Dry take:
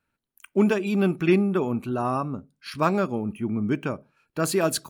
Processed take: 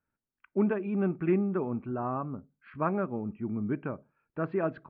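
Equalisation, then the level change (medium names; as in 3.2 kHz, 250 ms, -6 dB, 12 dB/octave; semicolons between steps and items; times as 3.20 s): low-pass 2.1 kHz 24 dB/octave; distance through air 240 m; -6.0 dB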